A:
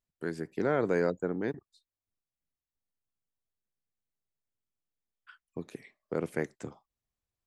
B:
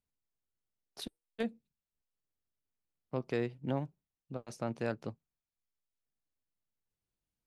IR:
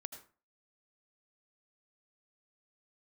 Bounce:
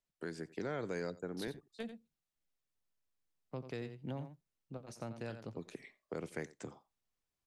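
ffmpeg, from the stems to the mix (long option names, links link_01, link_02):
-filter_complex "[0:a]lowpass=8500,equalizer=frequency=67:width=0.48:gain=-7,volume=0dB,asplit=2[link_01][link_02];[link_02]volume=-22dB[link_03];[1:a]adelay=400,volume=-3.5dB,asplit=2[link_04][link_05];[link_05]volume=-11.5dB[link_06];[link_03][link_06]amix=inputs=2:normalize=0,aecho=0:1:88:1[link_07];[link_01][link_04][link_07]amix=inputs=3:normalize=0,acrossover=split=140|3000[link_08][link_09][link_10];[link_09]acompressor=threshold=-43dB:ratio=2.5[link_11];[link_08][link_11][link_10]amix=inputs=3:normalize=0"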